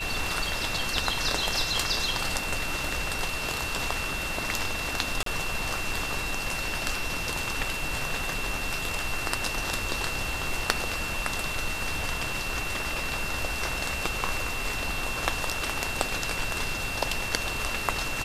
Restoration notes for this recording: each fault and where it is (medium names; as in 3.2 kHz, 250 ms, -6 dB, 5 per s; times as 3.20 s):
whine 2.7 kHz -33 dBFS
5.23–5.26 s: dropout 33 ms